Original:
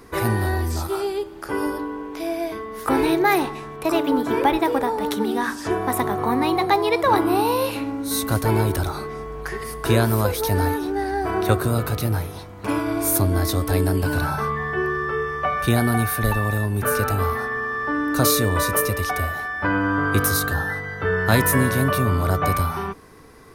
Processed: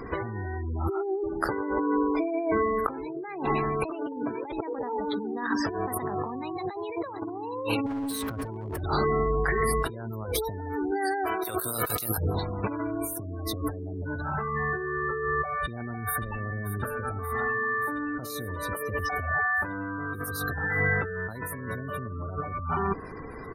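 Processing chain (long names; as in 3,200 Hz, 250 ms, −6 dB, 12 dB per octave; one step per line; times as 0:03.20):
0:10.91–0:12.18: RIAA equalisation recording
gate on every frequency bin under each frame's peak −20 dB strong
compressor whose output falls as the input rises −31 dBFS, ratio −1
0:07.86–0:08.81: hard clipping −29 dBFS, distortion −22 dB
0:15.63–0:16.43: delay throw 580 ms, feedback 70%, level −11.5 dB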